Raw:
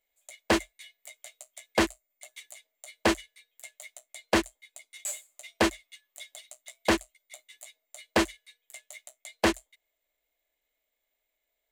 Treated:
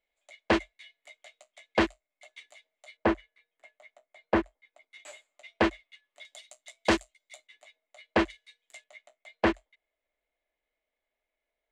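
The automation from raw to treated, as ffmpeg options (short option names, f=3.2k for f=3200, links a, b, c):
-af "asetnsamples=n=441:p=0,asendcmd='2.97 lowpass f 1600;4.91 lowpass f 2800;6.25 lowpass f 6600;7.47 lowpass f 2800;8.3 lowpass f 5500;8.84 lowpass f 2400',lowpass=3.5k"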